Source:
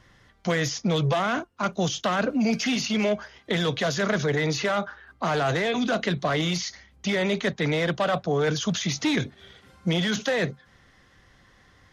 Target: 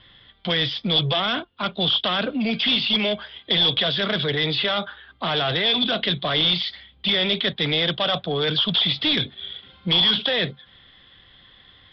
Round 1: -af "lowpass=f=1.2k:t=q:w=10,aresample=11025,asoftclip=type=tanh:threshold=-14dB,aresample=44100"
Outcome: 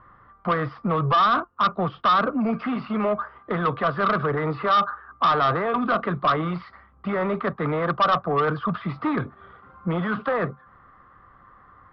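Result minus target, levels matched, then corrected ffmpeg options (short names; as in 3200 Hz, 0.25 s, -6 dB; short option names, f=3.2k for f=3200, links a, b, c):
4000 Hz band -16.0 dB
-af "lowpass=f=3.4k:t=q:w=10,aresample=11025,asoftclip=type=tanh:threshold=-14dB,aresample=44100"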